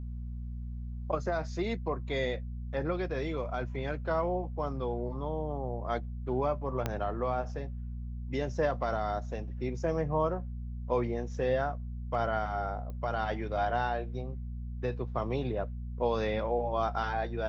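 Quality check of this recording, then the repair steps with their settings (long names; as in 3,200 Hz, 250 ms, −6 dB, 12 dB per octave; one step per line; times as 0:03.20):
mains hum 60 Hz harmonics 4 −38 dBFS
0:06.86: click −16 dBFS
0:12.90: click −31 dBFS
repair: click removal
hum removal 60 Hz, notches 4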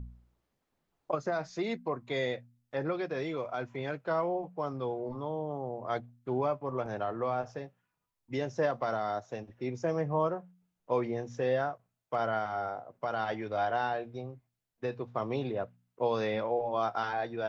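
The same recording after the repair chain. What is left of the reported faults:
0:06.86: click
0:12.90: click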